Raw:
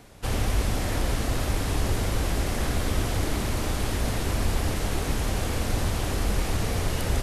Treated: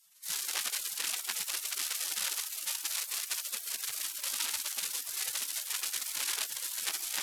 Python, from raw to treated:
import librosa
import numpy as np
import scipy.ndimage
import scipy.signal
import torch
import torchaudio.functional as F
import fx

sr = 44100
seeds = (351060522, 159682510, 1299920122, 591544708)

y = fx.cheby_harmonics(x, sr, harmonics=(5, 6), levels_db=(-15, -9), full_scale_db=-11.5)
y = fx.echo_diffused(y, sr, ms=528, feedback_pct=42, wet_db=-16.0)
y = fx.spec_gate(y, sr, threshold_db=-30, keep='weak')